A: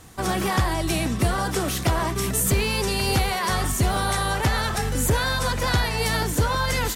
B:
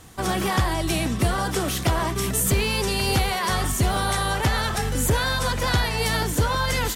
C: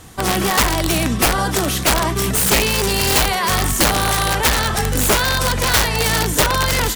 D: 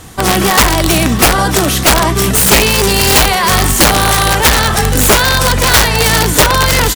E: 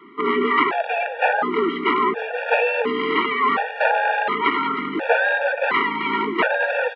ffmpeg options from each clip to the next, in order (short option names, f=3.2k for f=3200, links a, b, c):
-af "equalizer=f=3.2k:w=5.2:g=2.5"
-af "aeval=exprs='(mod(5.96*val(0)+1,2)-1)/5.96':c=same,volume=6dB"
-af "aecho=1:1:613:0.15,volume=7dB"
-af "highpass=f=210:t=q:w=0.5412,highpass=f=210:t=q:w=1.307,lowpass=f=2.6k:t=q:w=0.5176,lowpass=f=2.6k:t=q:w=0.7071,lowpass=f=2.6k:t=q:w=1.932,afreqshift=51,afftfilt=real='re*gt(sin(2*PI*0.7*pts/sr)*(1-2*mod(floor(b*sr/1024/470),2)),0)':imag='im*gt(sin(2*PI*0.7*pts/sr)*(1-2*mod(floor(b*sr/1024/470),2)),0)':win_size=1024:overlap=0.75,volume=-4dB"